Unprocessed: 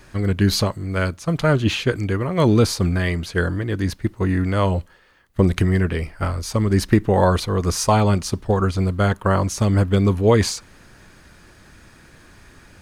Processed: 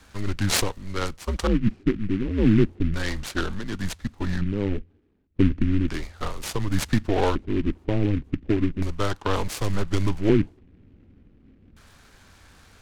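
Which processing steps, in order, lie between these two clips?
LFO low-pass square 0.34 Hz 380–4800 Hz; frequency shift -100 Hz; delay time shaken by noise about 1.9 kHz, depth 0.053 ms; trim -5.5 dB

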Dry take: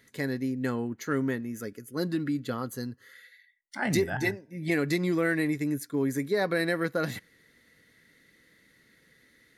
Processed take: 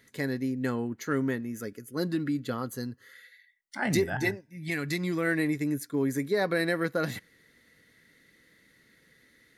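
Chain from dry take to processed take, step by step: 4.40–5.26 s: peaking EQ 460 Hz -15 dB -> -3 dB 1.9 oct

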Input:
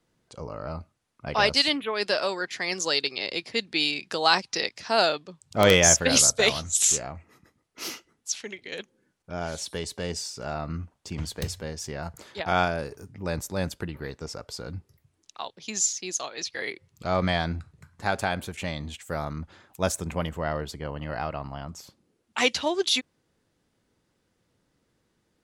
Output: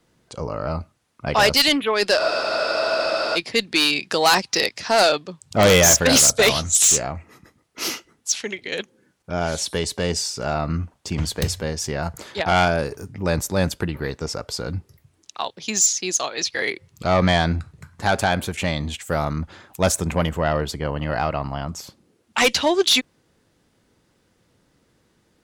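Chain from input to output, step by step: Chebyshev shaper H 5 -9 dB, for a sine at -7 dBFS; spectral freeze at 2.20 s, 1.15 s

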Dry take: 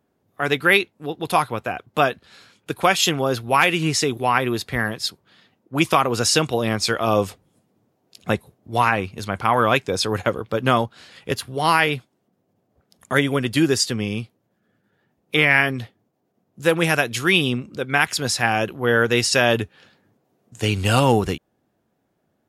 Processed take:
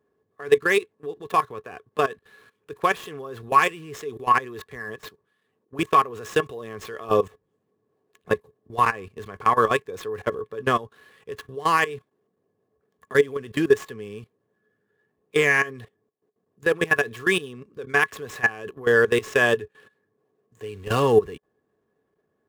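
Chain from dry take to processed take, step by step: median filter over 9 samples; treble shelf 3.1 kHz +4 dB; level held to a coarse grid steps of 18 dB; small resonant body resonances 430/1100/1700 Hz, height 16 dB, ringing for 65 ms; trim -5 dB

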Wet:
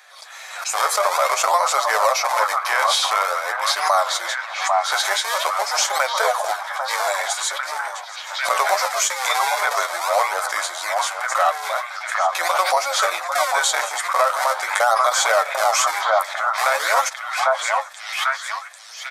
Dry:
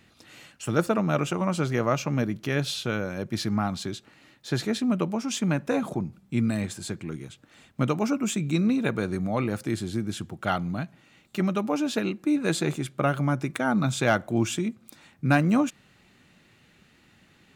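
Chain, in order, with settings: in parallel at -7 dB: decimation with a swept rate 38×, swing 160% 0.49 Hz; on the sum: resampled via 32 kHz; speed mistake 48 kHz file played as 44.1 kHz; steep high-pass 600 Hz 48 dB/octave; peaking EQ 2.8 kHz -11 dB 0.38 oct; repeats whose band climbs or falls 796 ms, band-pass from 920 Hz, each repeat 0.7 oct, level -4 dB; flange 0.52 Hz, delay 6.4 ms, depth 5.7 ms, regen +31%; loudness maximiser +24.5 dB; swell ahead of each attack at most 68 dB/s; trim -6.5 dB

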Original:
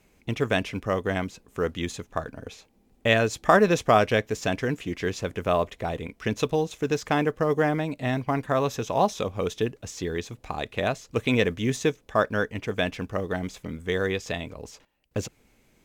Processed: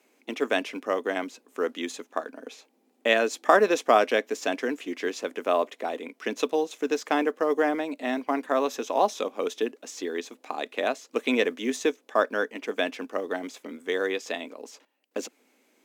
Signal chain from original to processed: elliptic high-pass 250 Hz, stop band 60 dB

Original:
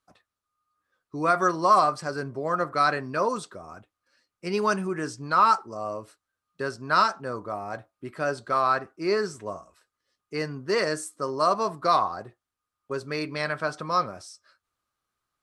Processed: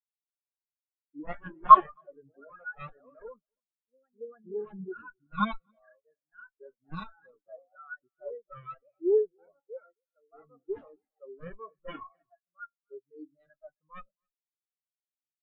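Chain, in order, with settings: in parallel at -5 dB: crossover distortion -35 dBFS; on the sum: ever faster or slower copies 168 ms, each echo +2 st, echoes 2, each echo -6 dB; Chebyshev shaper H 6 -13 dB, 7 -8 dB, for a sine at -2 dBFS; bass shelf 400 Hz +2 dB; feedback comb 280 Hz, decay 0.53 s, harmonics all, mix 60%; on a send: delay 266 ms -11.5 dB; on the sum: spectral contrast expander 4:1; trim +3.5 dB

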